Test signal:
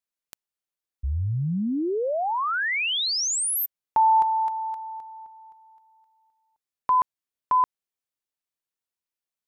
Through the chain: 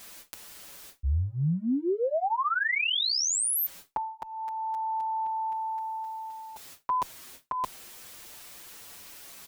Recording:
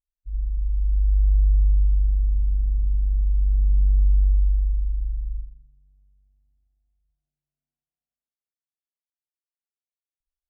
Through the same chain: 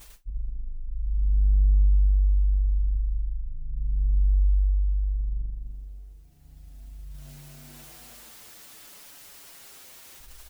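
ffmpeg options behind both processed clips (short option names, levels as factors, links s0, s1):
-filter_complex "[0:a]areverse,acompressor=mode=upward:threshold=0.0794:ratio=4:attack=0.67:release=79:knee=2.83:detection=peak,areverse,asplit=2[s0][s1];[s1]adelay=6.3,afreqshift=-0.36[s2];[s0][s2]amix=inputs=2:normalize=1"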